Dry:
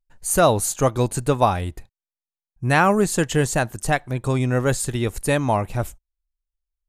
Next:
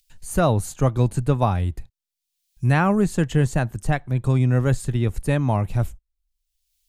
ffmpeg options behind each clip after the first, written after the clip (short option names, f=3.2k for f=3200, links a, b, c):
-filter_complex "[0:a]bass=f=250:g=10,treble=f=4k:g=-6,acrossover=split=120|3100[a][b][c];[c]acompressor=mode=upward:threshold=-38dB:ratio=2.5[d];[a][b][d]amix=inputs=3:normalize=0,volume=-5dB"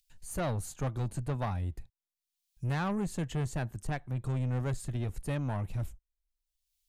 -af "asoftclip=type=tanh:threshold=-18.5dB,volume=-9dB"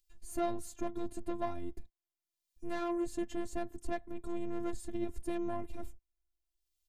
-af "firequalizer=gain_entry='entry(100,0);entry(160,6);entry(1200,-4)':delay=0.05:min_phase=1,afftfilt=real='hypot(re,im)*cos(PI*b)':imag='0':win_size=512:overlap=0.75,volume=2dB"